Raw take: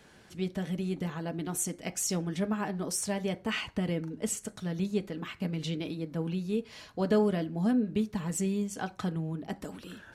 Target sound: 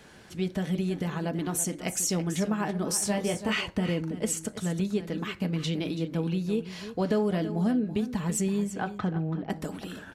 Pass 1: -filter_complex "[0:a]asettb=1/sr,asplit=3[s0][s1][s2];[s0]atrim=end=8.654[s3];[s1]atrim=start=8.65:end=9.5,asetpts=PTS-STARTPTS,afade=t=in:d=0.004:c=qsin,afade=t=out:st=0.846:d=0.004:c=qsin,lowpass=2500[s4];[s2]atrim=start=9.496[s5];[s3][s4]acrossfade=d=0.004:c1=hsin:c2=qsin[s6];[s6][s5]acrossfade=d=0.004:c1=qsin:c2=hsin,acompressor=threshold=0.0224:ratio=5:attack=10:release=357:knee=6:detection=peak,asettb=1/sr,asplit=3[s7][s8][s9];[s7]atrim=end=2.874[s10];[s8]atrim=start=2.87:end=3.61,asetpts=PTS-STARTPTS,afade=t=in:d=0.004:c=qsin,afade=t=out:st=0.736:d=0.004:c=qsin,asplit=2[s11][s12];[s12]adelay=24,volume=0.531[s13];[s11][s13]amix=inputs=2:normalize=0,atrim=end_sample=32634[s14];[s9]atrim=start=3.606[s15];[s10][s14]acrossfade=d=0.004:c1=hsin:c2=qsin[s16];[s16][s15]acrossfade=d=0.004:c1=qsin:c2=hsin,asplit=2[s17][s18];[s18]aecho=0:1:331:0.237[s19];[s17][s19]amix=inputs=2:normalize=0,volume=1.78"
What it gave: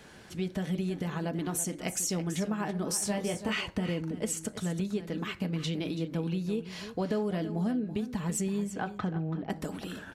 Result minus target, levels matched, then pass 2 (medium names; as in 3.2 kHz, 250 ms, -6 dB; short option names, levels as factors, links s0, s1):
compression: peak gain reduction +5 dB
-filter_complex "[0:a]asettb=1/sr,asplit=3[s0][s1][s2];[s0]atrim=end=8.654[s3];[s1]atrim=start=8.65:end=9.5,asetpts=PTS-STARTPTS,afade=t=in:d=0.004:c=qsin,afade=t=out:st=0.846:d=0.004:c=qsin,lowpass=2500[s4];[s2]atrim=start=9.496[s5];[s3][s4]acrossfade=d=0.004:c1=hsin:c2=qsin[s6];[s6][s5]acrossfade=d=0.004:c1=qsin:c2=hsin,acompressor=threshold=0.0447:ratio=5:attack=10:release=357:knee=6:detection=peak,asettb=1/sr,asplit=3[s7][s8][s9];[s7]atrim=end=2.874[s10];[s8]atrim=start=2.87:end=3.61,asetpts=PTS-STARTPTS,afade=t=in:d=0.004:c=qsin,afade=t=out:st=0.736:d=0.004:c=qsin,asplit=2[s11][s12];[s12]adelay=24,volume=0.531[s13];[s11][s13]amix=inputs=2:normalize=0,atrim=end_sample=32634[s14];[s9]atrim=start=3.606[s15];[s10][s14]acrossfade=d=0.004:c1=hsin:c2=qsin[s16];[s16][s15]acrossfade=d=0.004:c1=qsin:c2=hsin,asplit=2[s17][s18];[s18]aecho=0:1:331:0.237[s19];[s17][s19]amix=inputs=2:normalize=0,volume=1.78"